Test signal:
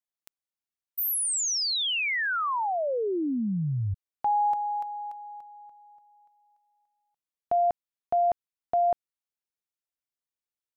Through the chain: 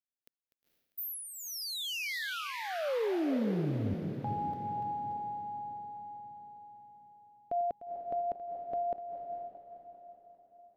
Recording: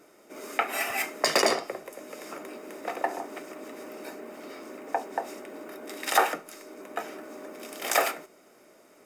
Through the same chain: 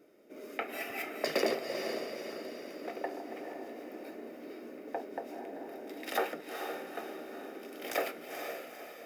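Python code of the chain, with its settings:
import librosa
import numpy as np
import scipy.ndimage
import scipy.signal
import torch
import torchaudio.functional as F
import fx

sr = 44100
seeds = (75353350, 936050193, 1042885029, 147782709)

y = fx.reverse_delay_fb(x, sr, ms=199, feedback_pct=67, wet_db=-14)
y = fx.graphic_eq(y, sr, hz=(250, 500, 1000, 8000), db=(4, 5, -9, -12))
y = fx.echo_diffused(y, sr, ms=481, feedback_pct=44, wet_db=-6)
y = y * 10.0 ** (-7.5 / 20.0)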